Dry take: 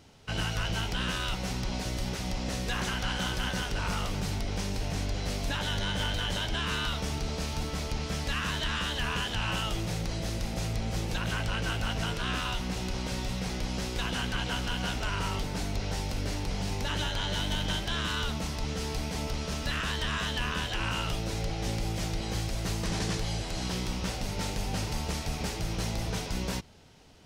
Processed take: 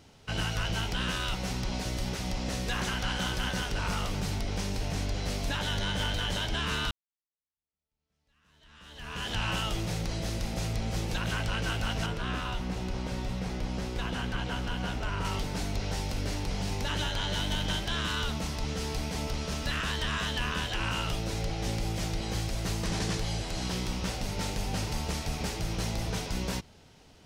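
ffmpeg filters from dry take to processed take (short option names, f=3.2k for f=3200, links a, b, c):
-filter_complex "[0:a]asettb=1/sr,asplit=3[a][b][c];[a]atrim=end=12.064[d];[b]atrim=start=12.06:end=15.25,asetpts=PTS-STARTPTS,afade=t=in:d=0.004:c=qsin,afade=t=out:st=3.186:d=0.004:c=qsin,highshelf=f=2.4k:g=-8.5[e];[c]atrim=start=15.246[f];[d][e]acrossfade=d=0.004:c1=hsin:c2=qsin[g];[g][f]acrossfade=d=0.004:c1=qsin:c2=hsin,asplit=2[h][i];[h]atrim=end=6.91,asetpts=PTS-STARTPTS,afade=t=out:st=6.906:d=0.004:c=hsin[j];[i]atrim=start=6.91,asetpts=PTS-STARTPTS,afade=t=in:d=2.4:c=exp[k];[j][k]concat=n=2:v=0:a=1"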